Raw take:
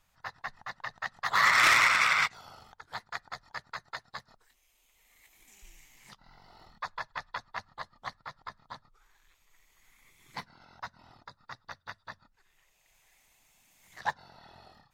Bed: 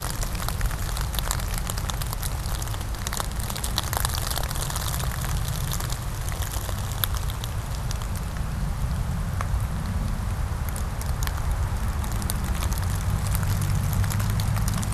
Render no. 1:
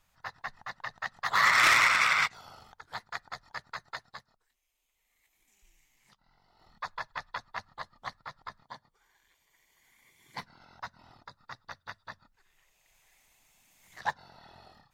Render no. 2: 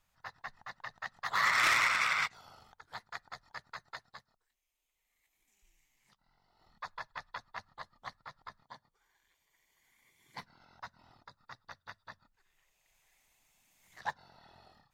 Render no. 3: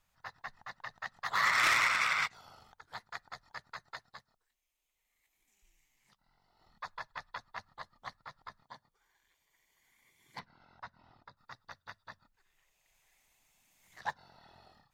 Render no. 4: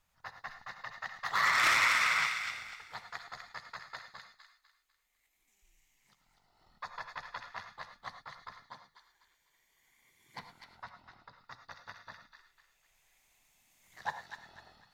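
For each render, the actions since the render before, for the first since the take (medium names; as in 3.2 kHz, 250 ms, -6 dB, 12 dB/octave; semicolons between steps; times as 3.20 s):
4.01–6.86 s: dip -11 dB, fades 0.30 s; 8.63–10.38 s: comb of notches 1.3 kHz
trim -5.5 dB
10.39–11.37 s: distance through air 140 m
on a send: feedback echo behind a high-pass 249 ms, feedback 34%, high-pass 1.6 kHz, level -5 dB; on the sum: gated-style reverb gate 130 ms rising, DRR 8.5 dB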